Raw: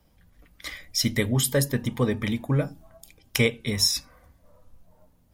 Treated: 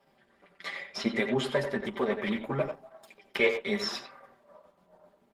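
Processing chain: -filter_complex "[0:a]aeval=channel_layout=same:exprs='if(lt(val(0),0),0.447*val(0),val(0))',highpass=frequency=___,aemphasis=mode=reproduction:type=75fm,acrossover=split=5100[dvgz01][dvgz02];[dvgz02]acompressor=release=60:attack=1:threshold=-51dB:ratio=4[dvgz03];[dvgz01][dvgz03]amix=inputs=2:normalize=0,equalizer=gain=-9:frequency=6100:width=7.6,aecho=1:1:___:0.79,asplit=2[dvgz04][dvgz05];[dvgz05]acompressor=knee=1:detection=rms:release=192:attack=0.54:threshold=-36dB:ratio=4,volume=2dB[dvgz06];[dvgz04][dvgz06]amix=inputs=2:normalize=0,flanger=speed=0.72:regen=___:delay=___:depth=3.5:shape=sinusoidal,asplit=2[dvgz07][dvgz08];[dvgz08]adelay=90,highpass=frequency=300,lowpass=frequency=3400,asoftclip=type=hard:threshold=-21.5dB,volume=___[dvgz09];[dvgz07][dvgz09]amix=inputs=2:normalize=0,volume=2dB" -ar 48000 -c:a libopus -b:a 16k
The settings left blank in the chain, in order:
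330, 5.1, 5, 7.5, -7dB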